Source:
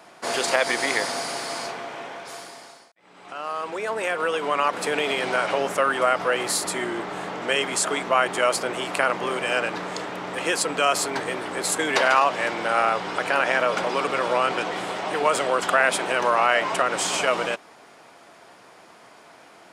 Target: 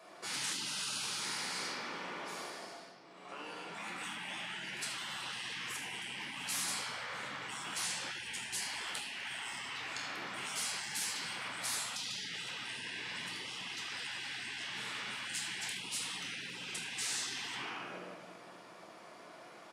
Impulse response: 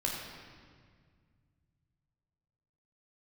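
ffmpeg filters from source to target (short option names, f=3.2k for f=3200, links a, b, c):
-filter_complex "[0:a]asplit=3[a][b][c];[a]afade=t=out:st=8.16:d=0.02[d];[b]afreqshift=-56,afade=t=in:st=8.16:d=0.02,afade=t=out:st=9.06:d=0.02[e];[c]afade=t=in:st=9.06:d=0.02[f];[d][e][f]amix=inputs=3:normalize=0,bandreject=f=1.6k:w=18,aecho=1:1:75|150|225|300:0.158|0.0745|0.035|0.0165[g];[1:a]atrim=start_sample=2205,asetrate=48510,aresample=44100[h];[g][h]afir=irnorm=-1:irlink=0,afftfilt=real='re*lt(hypot(re,im),0.1)':imag='im*lt(hypot(re,im),0.1)':win_size=1024:overlap=0.75,highpass=160,volume=-8.5dB"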